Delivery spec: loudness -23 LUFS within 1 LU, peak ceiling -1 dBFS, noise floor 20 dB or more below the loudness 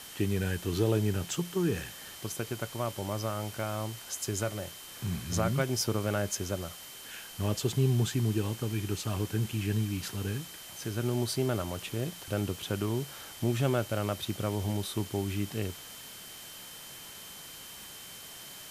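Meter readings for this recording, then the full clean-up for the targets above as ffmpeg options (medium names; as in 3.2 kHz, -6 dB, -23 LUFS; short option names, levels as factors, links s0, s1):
steady tone 3.1 kHz; tone level -51 dBFS; noise floor -47 dBFS; noise floor target -53 dBFS; loudness -32.5 LUFS; peak level -14.0 dBFS; loudness target -23.0 LUFS
-> -af "bandreject=f=3100:w=30"
-af "afftdn=nr=6:nf=-47"
-af "volume=2.99"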